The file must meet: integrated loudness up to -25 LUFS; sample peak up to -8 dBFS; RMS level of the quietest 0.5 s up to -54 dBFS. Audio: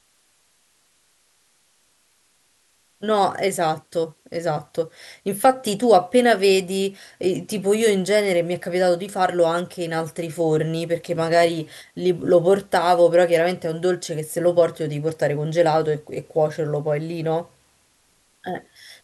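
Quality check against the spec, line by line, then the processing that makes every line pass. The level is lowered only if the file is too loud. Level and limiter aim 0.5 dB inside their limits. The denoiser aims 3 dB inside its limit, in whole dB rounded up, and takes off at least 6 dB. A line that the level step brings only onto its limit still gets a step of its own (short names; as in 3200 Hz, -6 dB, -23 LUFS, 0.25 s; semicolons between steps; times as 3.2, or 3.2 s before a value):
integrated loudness -21.0 LUFS: fail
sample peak -4.0 dBFS: fail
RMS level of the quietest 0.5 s -62 dBFS: OK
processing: gain -4.5 dB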